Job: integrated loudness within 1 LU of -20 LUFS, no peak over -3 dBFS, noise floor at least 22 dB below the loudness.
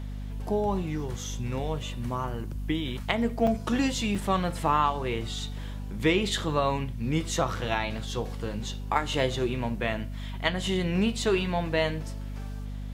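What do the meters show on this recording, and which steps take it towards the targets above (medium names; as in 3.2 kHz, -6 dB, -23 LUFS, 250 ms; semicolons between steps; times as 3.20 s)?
dropouts 2; longest dropout 4.5 ms; hum 50 Hz; highest harmonic 250 Hz; hum level -33 dBFS; loudness -29.0 LUFS; peak level -8.0 dBFS; loudness target -20.0 LUFS
-> interpolate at 3.47/4.15 s, 4.5 ms; de-hum 50 Hz, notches 5; trim +9 dB; peak limiter -3 dBFS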